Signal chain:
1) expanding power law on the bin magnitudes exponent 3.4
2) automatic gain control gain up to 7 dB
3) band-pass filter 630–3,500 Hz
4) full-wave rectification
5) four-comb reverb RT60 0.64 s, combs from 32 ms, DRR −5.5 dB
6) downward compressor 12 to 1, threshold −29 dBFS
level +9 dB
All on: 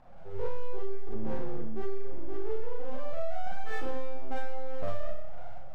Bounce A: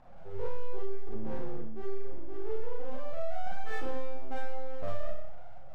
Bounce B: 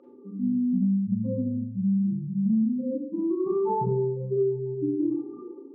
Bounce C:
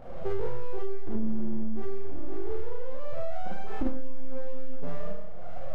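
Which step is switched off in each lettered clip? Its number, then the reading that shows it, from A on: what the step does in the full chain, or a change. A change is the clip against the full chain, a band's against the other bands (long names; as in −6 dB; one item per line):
2, change in integrated loudness −1.5 LU
4, change in crest factor +5.5 dB
3, 250 Hz band +8.0 dB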